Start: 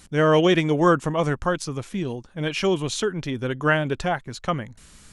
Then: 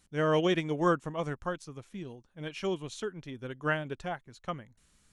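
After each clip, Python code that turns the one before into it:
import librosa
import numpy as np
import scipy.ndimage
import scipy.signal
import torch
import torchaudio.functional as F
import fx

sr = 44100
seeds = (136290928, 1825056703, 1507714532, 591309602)

y = fx.notch(x, sr, hz=4900.0, q=25.0)
y = fx.upward_expand(y, sr, threshold_db=-33.0, expansion=1.5)
y = y * librosa.db_to_amplitude(-8.0)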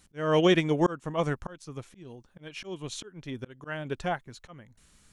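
y = fx.auto_swell(x, sr, attack_ms=319.0)
y = y * librosa.db_to_amplitude(6.0)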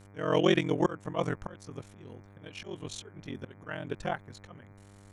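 y = x * np.sin(2.0 * np.pi * 22.0 * np.arange(len(x)) / sr)
y = fx.dmg_buzz(y, sr, base_hz=100.0, harmonics=24, level_db=-54.0, tilt_db=-6, odd_only=False)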